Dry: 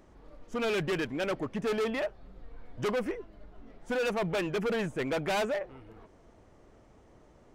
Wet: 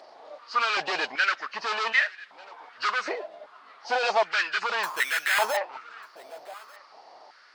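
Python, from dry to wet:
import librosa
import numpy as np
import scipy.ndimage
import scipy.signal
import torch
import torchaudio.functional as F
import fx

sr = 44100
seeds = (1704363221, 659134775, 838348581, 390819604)

p1 = fx.freq_compress(x, sr, knee_hz=2500.0, ratio=1.5)
p2 = fx.peak_eq(p1, sr, hz=4700.0, db=13.5, octaves=0.94)
p3 = fx.over_compress(p2, sr, threshold_db=-31.0, ratio=-0.5)
p4 = p2 + (p3 * librosa.db_to_amplitude(-0.5))
p5 = fx.sample_hold(p4, sr, seeds[0], rate_hz=5800.0, jitter_pct=0, at=(4.83, 5.57))
p6 = p5 + fx.echo_single(p5, sr, ms=1194, db=-22.0, dry=0)
y = fx.filter_held_highpass(p6, sr, hz=2.6, low_hz=680.0, high_hz=1700.0)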